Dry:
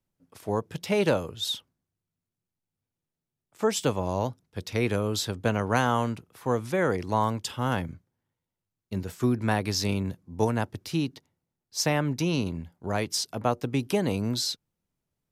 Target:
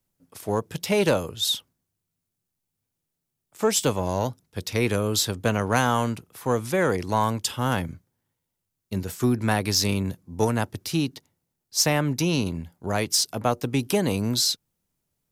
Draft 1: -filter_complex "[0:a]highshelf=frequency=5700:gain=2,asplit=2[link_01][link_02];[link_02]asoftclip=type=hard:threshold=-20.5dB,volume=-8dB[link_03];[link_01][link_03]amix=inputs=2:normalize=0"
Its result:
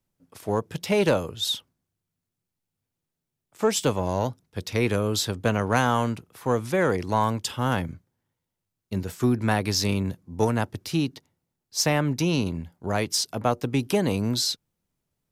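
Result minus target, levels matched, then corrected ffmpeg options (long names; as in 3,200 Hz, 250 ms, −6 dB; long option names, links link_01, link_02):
8,000 Hz band −3.0 dB
-filter_complex "[0:a]highshelf=frequency=5700:gain=9,asplit=2[link_01][link_02];[link_02]asoftclip=type=hard:threshold=-20.5dB,volume=-8dB[link_03];[link_01][link_03]amix=inputs=2:normalize=0"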